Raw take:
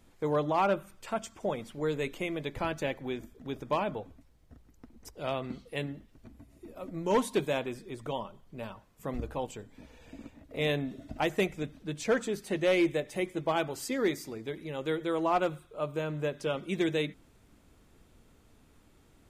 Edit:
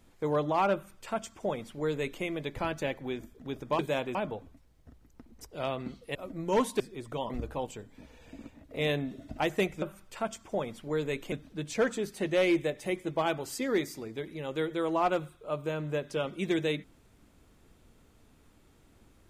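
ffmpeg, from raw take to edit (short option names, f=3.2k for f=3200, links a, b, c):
-filter_complex "[0:a]asplit=8[a][b][c][d][e][f][g][h];[a]atrim=end=3.792[i];[b]atrim=start=7.378:end=7.742[j];[c]atrim=start=3.788:end=5.792[k];[d]atrim=start=6.728:end=7.382[l];[e]atrim=start=7.738:end=8.242[m];[f]atrim=start=9.098:end=11.622[n];[g]atrim=start=0.728:end=2.232[o];[h]atrim=start=11.618[p];[i][j]acrossfade=d=0.004:c1=hsin:c2=hsin[q];[q][k]acrossfade=d=0.004:c1=hsin:c2=hsin[r];[r][l]acrossfade=d=0.004:c1=hsin:c2=hsin[s];[s][m]acrossfade=d=0.004:c1=hsin:c2=hsin[t];[t][n]acrossfade=d=0.004:c1=hsin:c2=hsin[u];[u][o]acrossfade=d=0.004:c1=hsin:c2=hsin[v];[v][p]acrossfade=d=0.004:c1=hsin:c2=hsin"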